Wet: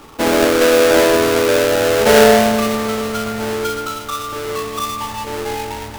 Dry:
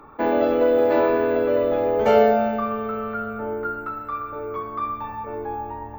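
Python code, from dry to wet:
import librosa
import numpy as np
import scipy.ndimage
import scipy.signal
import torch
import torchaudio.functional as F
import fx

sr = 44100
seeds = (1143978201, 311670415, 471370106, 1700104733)

y = fx.halfwave_hold(x, sr)
y = fx.echo_alternate(y, sr, ms=127, hz=1700.0, feedback_pct=59, wet_db=-7.5)
y = y * 10.0 ** (1.5 / 20.0)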